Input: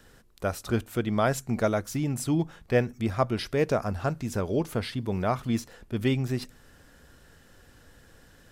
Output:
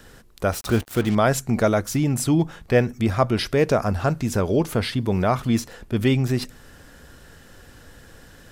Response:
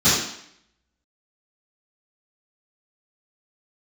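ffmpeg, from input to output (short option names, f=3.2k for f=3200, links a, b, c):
-filter_complex "[0:a]asplit=2[a][b];[b]alimiter=limit=-23dB:level=0:latency=1:release=26,volume=-3dB[c];[a][c]amix=inputs=2:normalize=0,asettb=1/sr,asplit=3[d][e][f];[d]atrim=end=0.524[g];[e]atrim=start=0.52:end=1.15,asetpts=PTS-STARTPTS,afade=t=in:d=0.004:c=qsin,afade=t=out:st=0.626:d=0.004:c=qsin,acrusher=bits=5:mix=0:aa=0.5[h];[f]atrim=start=1.146[i];[g][h]acrossfade=d=0.004:c1=hsin:c2=qsin[j];[j][i]acrossfade=d=0.004:c1=qsin:c2=hsin,volume=3.5dB"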